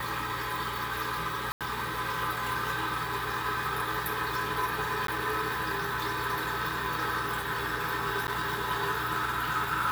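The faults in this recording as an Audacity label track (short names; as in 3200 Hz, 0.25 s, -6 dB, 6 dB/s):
1.520000	1.610000	gap 87 ms
5.070000	5.080000	gap 13 ms
8.270000	8.280000	gap 9.5 ms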